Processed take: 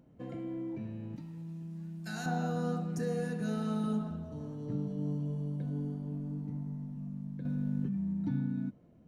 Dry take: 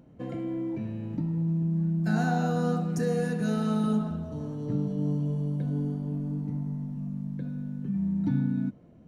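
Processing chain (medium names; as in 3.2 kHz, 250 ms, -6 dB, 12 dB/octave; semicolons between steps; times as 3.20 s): 1.16–2.26 s: tilt shelf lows -9.5 dB, about 1.5 kHz; 7.45–8.13 s: level flattener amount 100%; trim -6.5 dB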